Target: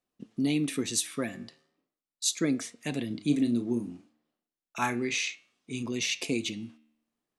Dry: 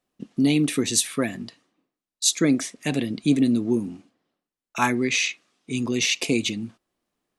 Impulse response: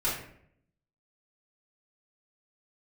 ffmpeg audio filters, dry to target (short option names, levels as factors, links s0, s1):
-filter_complex "[0:a]asettb=1/sr,asplit=3[s0][s1][s2];[s0]atrim=end=3.074[s3];[s1]atrim=start=3.07:end=5.83,asetpts=PTS-STARTPTS,afade=t=in:d=0.004:c=qsin,afade=t=out:st=2.756:d=0.004:c=qsin,asplit=2[s4][s5];[s5]adelay=34,volume=0.355[s6];[s4][s6]amix=inputs=2:normalize=0,atrim=end_sample=121716[s7];[s2]atrim=start=5.826[s8];[s3][s7]acrossfade=d=0.004:c1=hsin:c2=qsin[s9];[s9][s8]acrossfade=d=0.004:c1=qsin:c2=hsin,flanger=delay=8.5:depth=4.7:regen=88:speed=0.36:shape=sinusoidal,volume=0.708"